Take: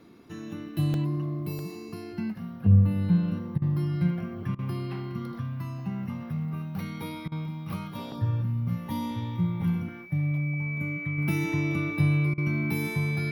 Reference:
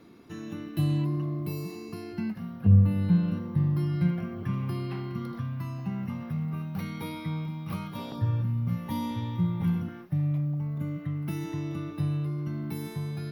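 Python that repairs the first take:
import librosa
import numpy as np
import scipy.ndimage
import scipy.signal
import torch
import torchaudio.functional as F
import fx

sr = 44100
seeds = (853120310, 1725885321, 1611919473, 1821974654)

y = fx.notch(x, sr, hz=2300.0, q=30.0)
y = fx.fix_interpolate(y, sr, at_s=(0.94, 1.59), length_ms=1.0)
y = fx.fix_interpolate(y, sr, at_s=(3.58, 4.55, 7.28, 12.34), length_ms=37.0)
y = fx.fix_level(y, sr, at_s=11.18, step_db=-5.5)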